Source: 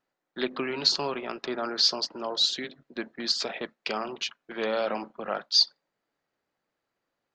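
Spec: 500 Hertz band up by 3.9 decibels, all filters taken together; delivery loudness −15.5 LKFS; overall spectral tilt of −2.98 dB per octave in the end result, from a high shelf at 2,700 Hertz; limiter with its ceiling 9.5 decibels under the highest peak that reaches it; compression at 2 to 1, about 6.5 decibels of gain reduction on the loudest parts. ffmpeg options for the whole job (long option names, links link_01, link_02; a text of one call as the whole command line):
ffmpeg -i in.wav -af "equalizer=frequency=500:width_type=o:gain=5,highshelf=frequency=2700:gain=-4.5,acompressor=threshold=-32dB:ratio=2,volume=20.5dB,alimiter=limit=-5dB:level=0:latency=1" out.wav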